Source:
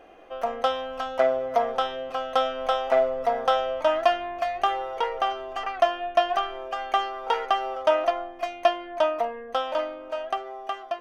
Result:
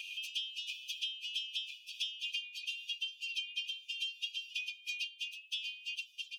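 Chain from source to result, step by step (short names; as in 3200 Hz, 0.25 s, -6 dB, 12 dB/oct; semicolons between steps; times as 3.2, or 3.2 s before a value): high shelf 5900 Hz -4 dB; plain phase-vocoder stretch 0.58×; AGC gain up to 8 dB; brick-wall FIR high-pass 2400 Hz; three-band squash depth 100%; gain -3.5 dB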